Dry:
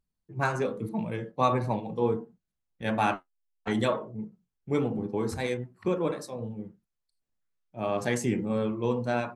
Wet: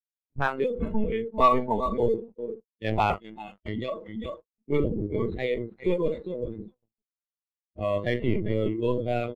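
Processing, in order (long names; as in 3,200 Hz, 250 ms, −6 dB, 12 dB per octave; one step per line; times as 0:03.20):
single-tap delay 395 ms −10.5 dB
noise gate −42 dBFS, range −46 dB
linear-prediction vocoder at 8 kHz pitch kept
leveller curve on the samples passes 1
0:03.15–0:04.25: downward compressor 2 to 1, threshold −30 dBFS, peak gain reduction 7 dB
noise reduction from a noise print of the clip's start 18 dB
0:00.70–0:01.97: comb filter 4.5 ms, depth 66%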